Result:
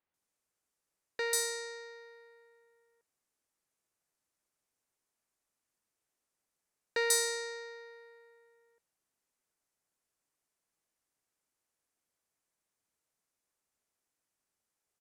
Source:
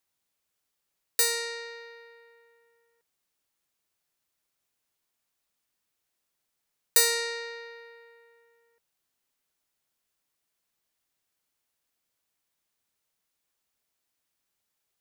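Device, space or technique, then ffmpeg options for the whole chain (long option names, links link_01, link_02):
exciter from parts: -filter_complex "[0:a]lowpass=10000,equalizer=frequency=410:width=0.59:gain=3,acrossover=split=3500[link_01][link_02];[link_02]adelay=140[link_03];[link_01][link_03]amix=inputs=2:normalize=0,asplit=2[link_04][link_05];[link_05]highpass=4200,asoftclip=type=tanh:threshold=-35.5dB,highpass=2100,volume=-6dB[link_06];[link_04][link_06]amix=inputs=2:normalize=0,volume=-4dB"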